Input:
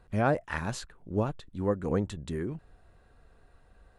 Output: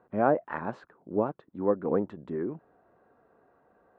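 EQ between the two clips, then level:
flat-topped band-pass 540 Hz, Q 0.52
+3.5 dB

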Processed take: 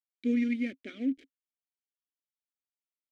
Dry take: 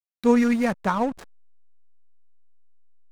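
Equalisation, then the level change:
formant filter i
phaser with its sweep stopped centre 420 Hz, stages 4
+5.0 dB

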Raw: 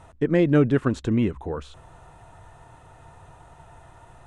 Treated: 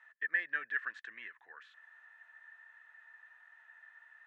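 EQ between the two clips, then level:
four-pole ladder band-pass 1,800 Hz, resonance 90%
0.0 dB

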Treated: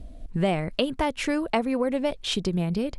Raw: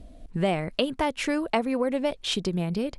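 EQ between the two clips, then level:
low-shelf EQ 120 Hz +6.5 dB
0.0 dB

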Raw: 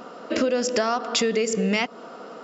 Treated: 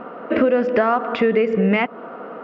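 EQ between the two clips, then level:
low-pass filter 2,300 Hz 24 dB per octave
+6.0 dB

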